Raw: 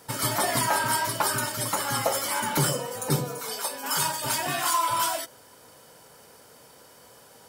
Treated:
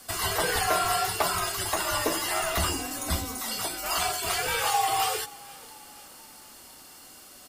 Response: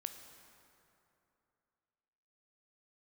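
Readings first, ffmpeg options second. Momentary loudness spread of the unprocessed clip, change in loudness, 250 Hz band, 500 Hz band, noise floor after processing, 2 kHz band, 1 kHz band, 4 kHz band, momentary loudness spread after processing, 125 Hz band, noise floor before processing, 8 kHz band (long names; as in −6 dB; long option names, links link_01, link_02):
7 LU, −1.0 dB, −3.5 dB, −0.5 dB, −49 dBFS, 0.0 dB, −0.5 dB, +1.0 dB, 22 LU, −5.5 dB, −53 dBFS, −1.5 dB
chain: -filter_complex "[0:a]acrossover=split=3700[link_01][link_02];[link_02]acompressor=threshold=-36dB:ratio=4:attack=1:release=60[link_03];[link_01][link_03]amix=inputs=2:normalize=0,tiltshelf=frequency=1100:gain=-6,afreqshift=-220,asplit=2[link_04][link_05];[link_05]asplit=4[link_06][link_07][link_08][link_09];[link_06]adelay=483,afreqshift=31,volume=-22dB[link_10];[link_07]adelay=966,afreqshift=62,volume=-27.5dB[link_11];[link_08]adelay=1449,afreqshift=93,volume=-33dB[link_12];[link_09]adelay=1932,afreqshift=124,volume=-38.5dB[link_13];[link_10][link_11][link_12][link_13]amix=inputs=4:normalize=0[link_14];[link_04][link_14]amix=inputs=2:normalize=0"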